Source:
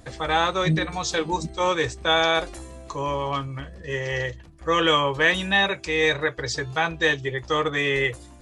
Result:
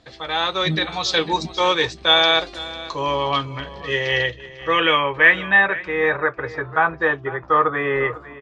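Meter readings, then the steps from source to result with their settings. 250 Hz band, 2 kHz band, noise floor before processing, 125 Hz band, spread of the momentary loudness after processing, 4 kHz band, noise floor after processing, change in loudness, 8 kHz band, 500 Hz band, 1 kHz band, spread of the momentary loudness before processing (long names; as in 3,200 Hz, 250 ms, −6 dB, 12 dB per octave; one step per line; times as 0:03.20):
+0.5 dB, +5.5 dB, −46 dBFS, −1.5 dB, 12 LU, +5.5 dB, −42 dBFS, +4.5 dB, can't be measured, +2.5 dB, +4.0 dB, 11 LU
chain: low-shelf EQ 140 Hz −9.5 dB
automatic gain control gain up to 10.5 dB
low-pass filter sweep 4,100 Hz → 1,300 Hz, 0:03.83–0:06.17
on a send: single-tap delay 498 ms −17 dB
on the sum: level −4.5 dB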